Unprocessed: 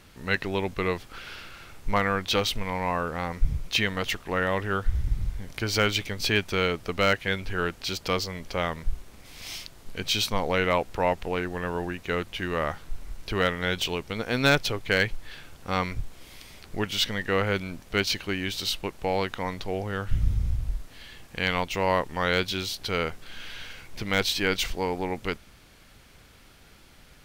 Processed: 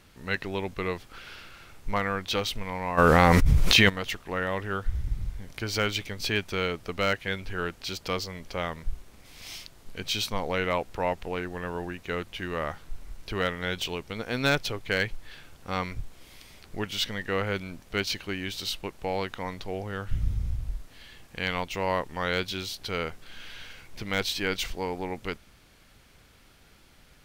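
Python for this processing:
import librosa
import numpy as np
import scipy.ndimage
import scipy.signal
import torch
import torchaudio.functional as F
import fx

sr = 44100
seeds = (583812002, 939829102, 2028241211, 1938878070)

y = fx.env_flatten(x, sr, amount_pct=100, at=(2.97, 3.88), fade=0.02)
y = F.gain(torch.from_numpy(y), -3.5).numpy()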